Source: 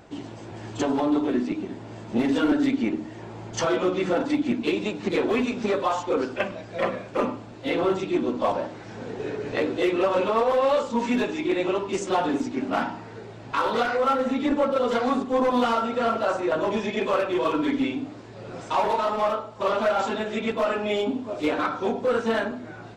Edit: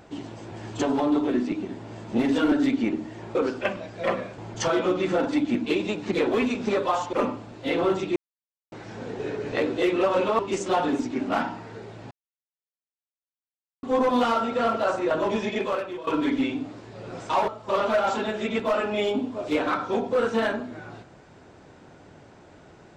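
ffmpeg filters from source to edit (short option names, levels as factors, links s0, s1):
-filter_complex "[0:a]asplit=11[s0][s1][s2][s3][s4][s5][s6][s7][s8][s9][s10];[s0]atrim=end=3.352[s11];[s1]atrim=start=6.098:end=7.132[s12];[s2]atrim=start=3.348:end=6.102[s13];[s3]atrim=start=7.128:end=8.16,asetpts=PTS-STARTPTS,afade=t=out:st=1.028:d=0.004:c=hsin[s14];[s4]atrim=start=8.16:end=8.72,asetpts=PTS-STARTPTS,volume=0[s15];[s5]atrim=start=8.72:end=10.392,asetpts=PTS-STARTPTS,afade=t=in:d=0.004:c=hsin[s16];[s6]atrim=start=11.798:end=13.52,asetpts=PTS-STARTPTS,afade=t=out:st=1.718:d=0.004:c=hsin[s17];[s7]atrim=start=13.52:end=15.24,asetpts=PTS-STARTPTS,volume=0[s18];[s8]atrim=start=15.24:end=17.48,asetpts=PTS-STARTPTS,afade=t=in:d=0.004:c=hsin,afade=t=out:st=1.67:d=0.57:silence=0.133352[s19];[s9]atrim=start=17.48:end=18.892,asetpts=PTS-STARTPTS,afade=t=in:d=0.004:c=hsin:silence=0.133352[s20];[s10]atrim=start=19.398[s21];[s11][s12]acrossfade=d=0.004:c1=hsin:c2=hsin[s22];[s22][s13]acrossfade=d=0.004:c1=hsin:c2=hsin[s23];[s14][s15][s16]concat=n=3:v=0:a=1[s24];[s23][s24]acrossfade=d=0.004:c1=hsin:c2=hsin[s25];[s17][s18][s19][s20]concat=n=4:v=0:a=1[s26];[s25][s26]acrossfade=d=0.004:c1=hsin:c2=hsin[s27];[s27][s21]acrossfade=d=0.004:c1=hsin:c2=hsin"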